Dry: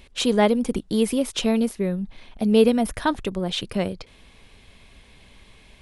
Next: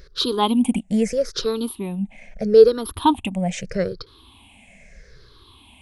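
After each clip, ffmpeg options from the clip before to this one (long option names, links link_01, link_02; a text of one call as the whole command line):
ffmpeg -i in.wav -af "afftfilt=real='re*pow(10,22/40*sin(2*PI*(0.57*log(max(b,1)*sr/1024/100)/log(2)-(-0.78)*(pts-256)/sr)))':imag='im*pow(10,22/40*sin(2*PI*(0.57*log(max(b,1)*sr/1024/100)/log(2)-(-0.78)*(pts-256)/sr)))':win_size=1024:overlap=0.75,volume=-3dB" out.wav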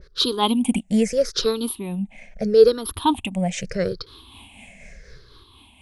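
ffmpeg -i in.wav -af "dynaudnorm=framelen=200:gausssize=11:maxgain=8dB,tremolo=f=4.1:d=0.39,adynamicequalizer=threshold=0.0141:dfrequency=1900:dqfactor=0.7:tfrequency=1900:tqfactor=0.7:attack=5:release=100:ratio=0.375:range=2:mode=boostabove:tftype=highshelf" out.wav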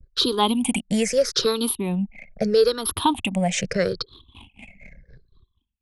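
ffmpeg -i in.wav -filter_complex "[0:a]anlmdn=0.158,acrossover=split=92|660[link_01][link_02][link_03];[link_01]acompressor=threshold=-51dB:ratio=4[link_04];[link_02]acompressor=threshold=-28dB:ratio=4[link_05];[link_03]acompressor=threshold=-25dB:ratio=4[link_06];[link_04][link_05][link_06]amix=inputs=3:normalize=0,agate=range=-33dB:threshold=-48dB:ratio=3:detection=peak,volume=5.5dB" out.wav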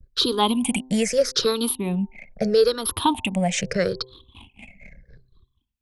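ffmpeg -i in.wav -af "bandreject=frequency=128.8:width_type=h:width=4,bandreject=frequency=257.6:width_type=h:width=4,bandreject=frequency=386.4:width_type=h:width=4,bandreject=frequency=515.2:width_type=h:width=4,bandreject=frequency=644:width_type=h:width=4,bandreject=frequency=772.8:width_type=h:width=4,bandreject=frequency=901.6:width_type=h:width=4,bandreject=frequency=1030.4:width_type=h:width=4" out.wav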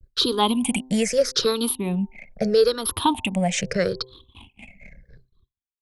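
ffmpeg -i in.wav -af "agate=range=-33dB:threshold=-48dB:ratio=3:detection=peak" out.wav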